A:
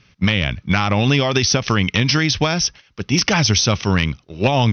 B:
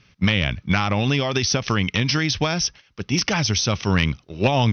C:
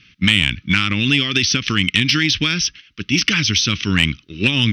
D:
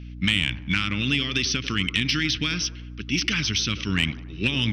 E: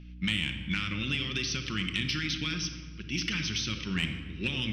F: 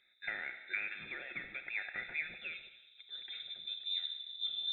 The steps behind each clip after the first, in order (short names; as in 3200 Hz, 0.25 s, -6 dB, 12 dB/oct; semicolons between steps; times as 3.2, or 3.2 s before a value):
vocal rider 0.5 s; gain -3.5 dB
EQ curve 140 Hz 0 dB, 300 Hz +6 dB, 740 Hz -22 dB, 1300 Hz +2 dB, 3000 Hz +12 dB, 5300 Hz +3 dB; soft clip -1.5 dBFS, distortion -20 dB
hum 60 Hz, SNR 12 dB; band-limited delay 94 ms, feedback 52%, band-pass 590 Hz, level -9 dB; gain -7.5 dB
shoebox room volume 1700 m³, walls mixed, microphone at 0.95 m; gain -8.5 dB
band-pass sweep 1700 Hz -> 320 Hz, 1.94–3.77; fixed phaser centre 550 Hz, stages 8; inverted band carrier 3800 Hz; gain +5 dB